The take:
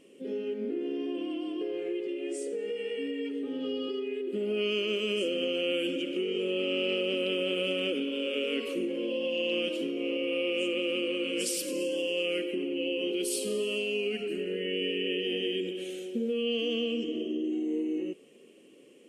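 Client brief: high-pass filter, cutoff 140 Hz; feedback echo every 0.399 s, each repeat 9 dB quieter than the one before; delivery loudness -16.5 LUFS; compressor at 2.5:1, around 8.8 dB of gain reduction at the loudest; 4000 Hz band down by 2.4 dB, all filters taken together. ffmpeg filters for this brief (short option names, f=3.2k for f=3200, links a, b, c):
-af "highpass=140,equalizer=f=4k:t=o:g=-4,acompressor=threshold=-41dB:ratio=2.5,aecho=1:1:399|798|1197|1596:0.355|0.124|0.0435|0.0152,volume=23dB"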